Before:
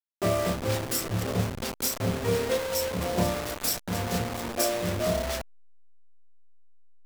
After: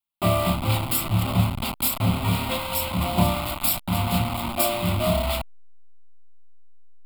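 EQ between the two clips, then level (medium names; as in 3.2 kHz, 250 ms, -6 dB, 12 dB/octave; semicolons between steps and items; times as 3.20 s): static phaser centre 1.7 kHz, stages 6; +8.5 dB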